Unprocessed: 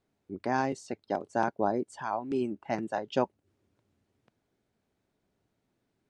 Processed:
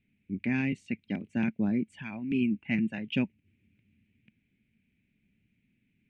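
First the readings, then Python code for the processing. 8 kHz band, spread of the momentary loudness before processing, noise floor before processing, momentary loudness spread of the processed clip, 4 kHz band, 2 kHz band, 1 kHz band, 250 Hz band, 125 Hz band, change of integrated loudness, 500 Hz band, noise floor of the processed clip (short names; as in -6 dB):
under -10 dB, 6 LU, -80 dBFS, 7 LU, +3.5 dB, +2.5 dB, -17.5 dB, +6.0 dB, +7.0 dB, +1.0 dB, -10.5 dB, -76 dBFS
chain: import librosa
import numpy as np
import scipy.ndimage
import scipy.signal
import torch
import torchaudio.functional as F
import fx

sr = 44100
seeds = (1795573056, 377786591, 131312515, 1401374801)

y = fx.curve_eq(x, sr, hz=(130.0, 220.0, 370.0, 750.0, 1200.0, 2400.0, 4900.0, 10000.0), db=(0, 5, -13, -24, -24, 10, -22, -16))
y = y * 10.0 ** (6.0 / 20.0)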